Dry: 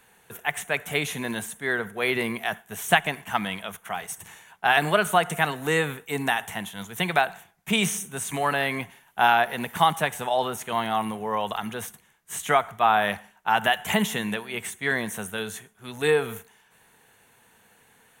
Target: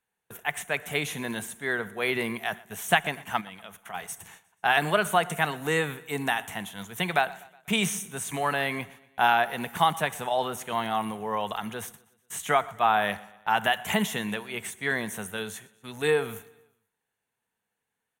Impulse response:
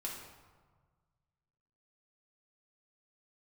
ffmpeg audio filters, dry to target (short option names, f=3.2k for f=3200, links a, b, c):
-filter_complex "[0:a]agate=range=-23dB:threshold=-46dB:ratio=16:detection=peak,asplit=3[a][b][c];[a]afade=t=out:st=3.4:d=0.02[d];[b]acompressor=threshold=-37dB:ratio=5,afade=t=in:st=3.4:d=0.02,afade=t=out:st=3.93:d=0.02[e];[c]afade=t=in:st=3.93:d=0.02[f];[d][e][f]amix=inputs=3:normalize=0,aecho=1:1:122|244|366|488:0.075|0.039|0.0203|0.0105,volume=-2.5dB"